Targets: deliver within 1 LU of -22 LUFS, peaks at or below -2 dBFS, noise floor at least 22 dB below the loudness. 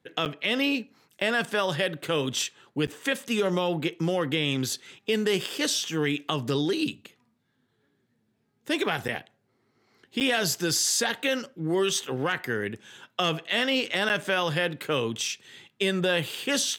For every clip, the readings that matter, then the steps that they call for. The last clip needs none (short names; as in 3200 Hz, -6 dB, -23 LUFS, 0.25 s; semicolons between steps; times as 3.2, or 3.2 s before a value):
dropouts 5; longest dropout 8.6 ms; loudness -27.0 LUFS; peak -11.0 dBFS; loudness target -22.0 LUFS
-> interpolate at 0.25/2.87/9.08/10.2/14.09, 8.6 ms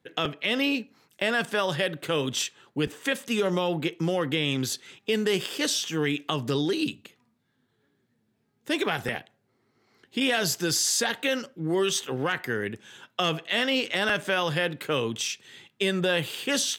dropouts 0; loudness -27.0 LUFS; peak -11.0 dBFS; loudness target -22.0 LUFS
-> gain +5 dB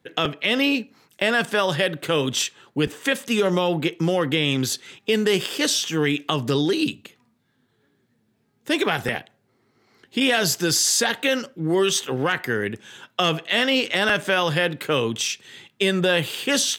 loudness -22.0 LUFS; peak -6.0 dBFS; noise floor -67 dBFS